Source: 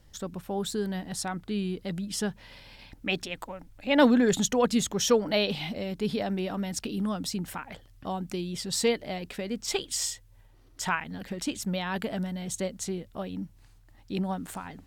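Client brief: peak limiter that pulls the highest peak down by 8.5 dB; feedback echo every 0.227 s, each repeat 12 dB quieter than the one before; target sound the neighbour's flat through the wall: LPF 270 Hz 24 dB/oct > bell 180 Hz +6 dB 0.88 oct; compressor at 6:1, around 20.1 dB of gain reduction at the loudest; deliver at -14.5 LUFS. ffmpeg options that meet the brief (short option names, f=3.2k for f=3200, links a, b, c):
-af "acompressor=threshold=-39dB:ratio=6,alimiter=level_in=10.5dB:limit=-24dB:level=0:latency=1,volume=-10.5dB,lowpass=f=270:w=0.5412,lowpass=f=270:w=1.3066,equalizer=f=180:t=o:w=0.88:g=6,aecho=1:1:227|454|681:0.251|0.0628|0.0157,volume=27.5dB"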